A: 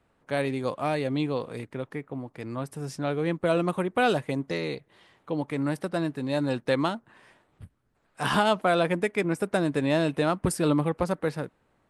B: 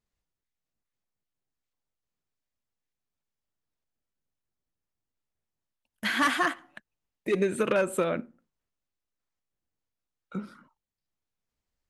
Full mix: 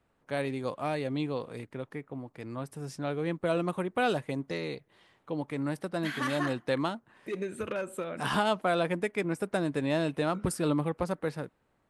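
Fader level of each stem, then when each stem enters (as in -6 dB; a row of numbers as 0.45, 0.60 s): -4.5, -9.0 dB; 0.00, 0.00 s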